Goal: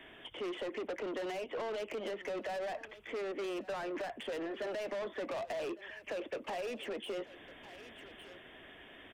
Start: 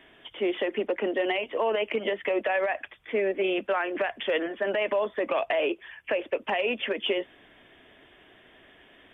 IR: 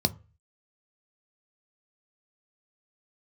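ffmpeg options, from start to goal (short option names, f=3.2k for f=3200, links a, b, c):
-filter_complex "[0:a]asoftclip=type=tanh:threshold=-33dB,aecho=1:1:1154:0.0944,acrossover=split=260|920[a][b][c];[a]acompressor=threshold=-56dB:ratio=4[d];[b]acompressor=threshold=-38dB:ratio=4[e];[c]acompressor=threshold=-48dB:ratio=4[f];[d][e][f]amix=inputs=3:normalize=0,volume=1dB"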